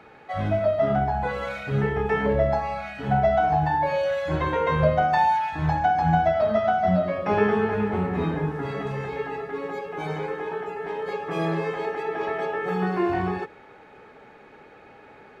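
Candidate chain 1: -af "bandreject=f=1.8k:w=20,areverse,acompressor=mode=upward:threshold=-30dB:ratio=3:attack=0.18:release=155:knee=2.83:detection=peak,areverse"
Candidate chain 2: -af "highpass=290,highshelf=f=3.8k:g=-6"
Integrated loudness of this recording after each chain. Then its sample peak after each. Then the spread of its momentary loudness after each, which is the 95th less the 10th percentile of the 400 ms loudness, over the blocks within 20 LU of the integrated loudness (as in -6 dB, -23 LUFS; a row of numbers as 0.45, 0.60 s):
-24.5, -26.0 LUFS; -8.5, -10.0 dBFS; 20, 11 LU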